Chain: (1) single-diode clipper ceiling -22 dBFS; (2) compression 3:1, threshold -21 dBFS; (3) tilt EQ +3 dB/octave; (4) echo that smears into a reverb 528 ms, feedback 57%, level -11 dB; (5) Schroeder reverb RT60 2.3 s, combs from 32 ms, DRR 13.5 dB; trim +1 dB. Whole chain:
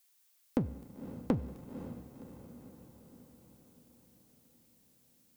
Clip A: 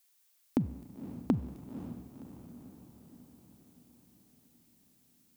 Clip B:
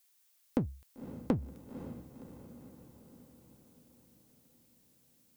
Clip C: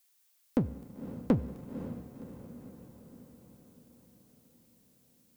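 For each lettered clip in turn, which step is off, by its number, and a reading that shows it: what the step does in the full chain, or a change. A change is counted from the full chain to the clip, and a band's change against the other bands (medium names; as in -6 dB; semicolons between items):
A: 1, 500 Hz band -3.5 dB; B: 5, echo-to-direct -8.0 dB to -9.5 dB; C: 2, mean gain reduction 1.5 dB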